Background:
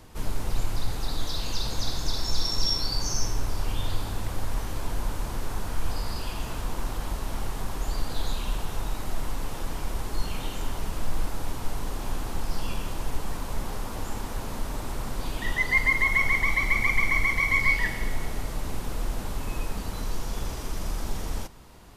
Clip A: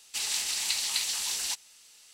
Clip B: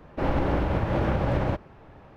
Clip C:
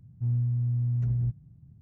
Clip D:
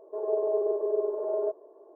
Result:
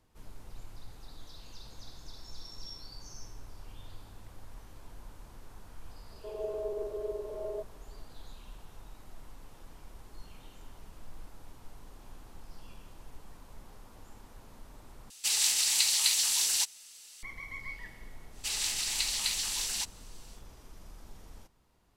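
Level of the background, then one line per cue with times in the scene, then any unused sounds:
background −19.5 dB
0:06.11: mix in D −9 dB
0:15.10: overwrite with A −1.5 dB + high-shelf EQ 3,700 Hz +7 dB
0:18.30: mix in A −2 dB, fades 0.10 s
not used: B, C

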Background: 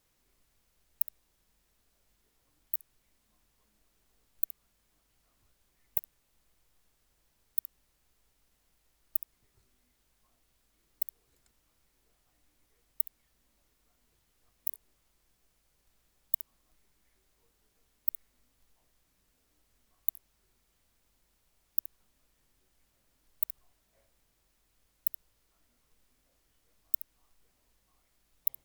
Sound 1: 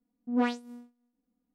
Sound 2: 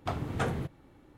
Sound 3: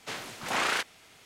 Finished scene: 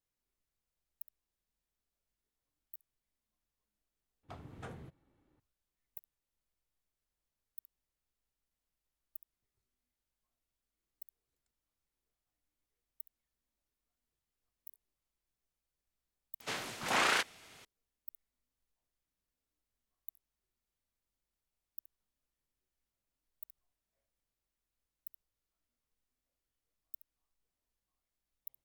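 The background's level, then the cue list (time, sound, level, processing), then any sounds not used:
background −18 dB
0:04.23: overwrite with 2 −16.5 dB
0:16.40: mix in 3 −1.5 dB
not used: 1

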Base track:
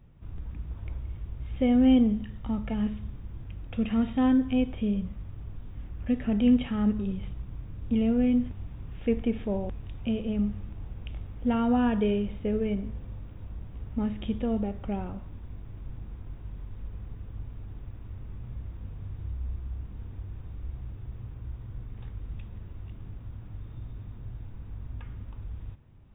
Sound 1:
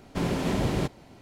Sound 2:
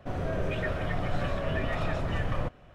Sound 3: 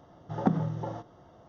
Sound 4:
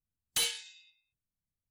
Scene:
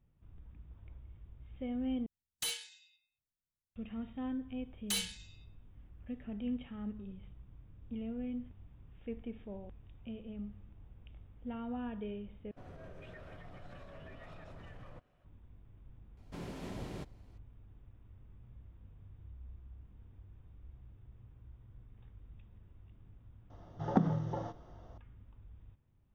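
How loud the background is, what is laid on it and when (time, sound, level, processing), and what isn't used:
base track −16 dB
0:02.06: overwrite with 4 −7 dB
0:04.54: mix in 4 −5 dB
0:12.51: overwrite with 2 −17.5 dB + brickwall limiter −24.5 dBFS
0:16.17: mix in 1 −17 dB
0:23.50: mix in 3 −3 dB

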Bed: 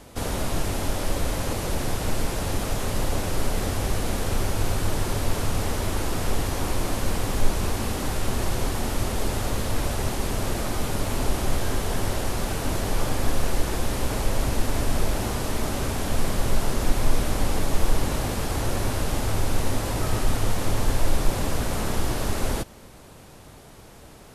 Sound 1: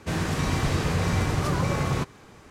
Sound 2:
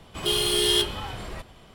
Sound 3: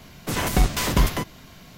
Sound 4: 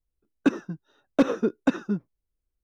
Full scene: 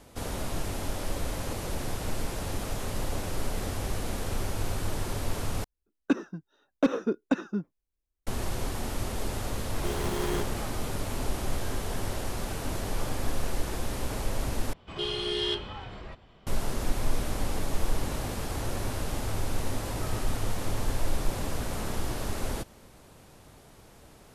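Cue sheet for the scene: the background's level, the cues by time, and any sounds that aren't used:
bed −6.5 dB
0:05.64: overwrite with 4 −3.5 dB + parametric band 120 Hz −8 dB 0.4 octaves
0:09.59: mix in 2 −6 dB + windowed peak hold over 17 samples
0:14.73: overwrite with 2 −5.5 dB + high-frequency loss of the air 140 metres
not used: 1, 3

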